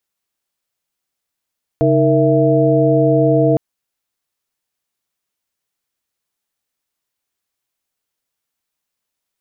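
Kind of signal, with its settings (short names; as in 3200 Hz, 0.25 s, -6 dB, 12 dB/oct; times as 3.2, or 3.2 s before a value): chord C#3/D#4/A#4/E5 sine, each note -15.5 dBFS 1.76 s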